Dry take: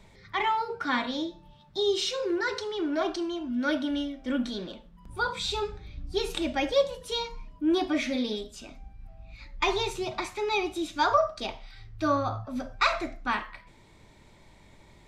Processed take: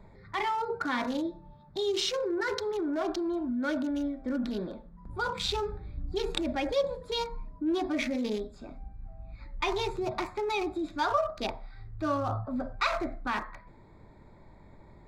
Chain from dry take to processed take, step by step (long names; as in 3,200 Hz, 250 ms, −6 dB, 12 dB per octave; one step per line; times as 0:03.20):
adaptive Wiener filter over 15 samples
in parallel at −2 dB: compressor whose output falls as the input rises −32 dBFS, ratio −0.5
on the sum: level −4.5 dB